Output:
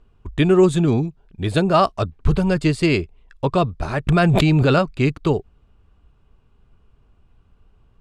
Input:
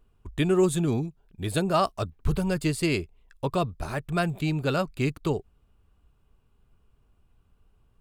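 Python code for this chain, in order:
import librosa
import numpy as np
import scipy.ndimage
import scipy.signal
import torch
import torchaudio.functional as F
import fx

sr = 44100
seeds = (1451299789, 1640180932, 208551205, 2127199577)

y = fx.air_absorb(x, sr, metres=84.0)
y = fx.env_flatten(y, sr, amount_pct=100, at=(4.07, 4.79))
y = y * librosa.db_to_amplitude(8.0)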